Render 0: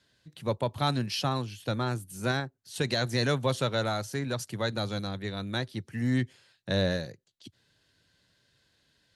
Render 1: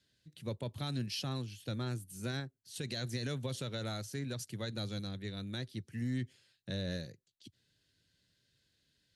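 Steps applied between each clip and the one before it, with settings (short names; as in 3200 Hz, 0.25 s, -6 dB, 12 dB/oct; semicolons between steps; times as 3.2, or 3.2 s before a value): bell 930 Hz -11 dB 1.6 oct; limiter -23 dBFS, peak gain reduction 7 dB; gain -5 dB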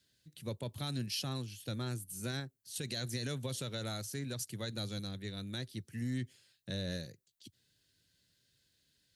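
high shelf 7400 Hz +11 dB; gain -1 dB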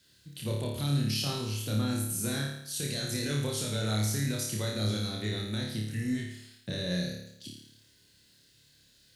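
limiter -34.5 dBFS, peak gain reduction 8.5 dB; on a send: flutter echo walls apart 4.8 m, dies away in 0.78 s; on the sum: gain +8 dB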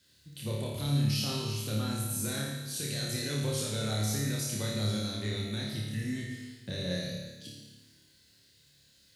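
plate-style reverb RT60 1.3 s, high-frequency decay 1×, DRR 2.5 dB; gain -2.5 dB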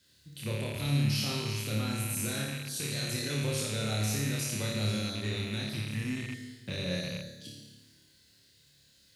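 rattling part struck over -38 dBFS, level -31 dBFS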